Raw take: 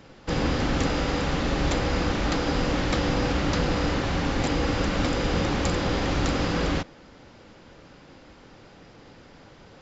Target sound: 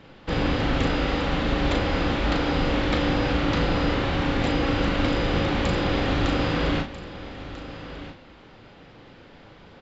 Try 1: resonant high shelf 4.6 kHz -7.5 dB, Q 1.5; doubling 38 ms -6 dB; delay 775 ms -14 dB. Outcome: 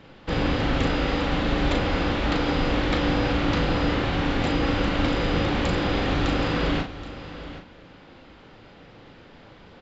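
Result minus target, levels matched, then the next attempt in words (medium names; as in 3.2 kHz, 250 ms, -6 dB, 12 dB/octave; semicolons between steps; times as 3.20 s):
echo 517 ms early
resonant high shelf 4.6 kHz -7.5 dB, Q 1.5; doubling 38 ms -6 dB; delay 1292 ms -14 dB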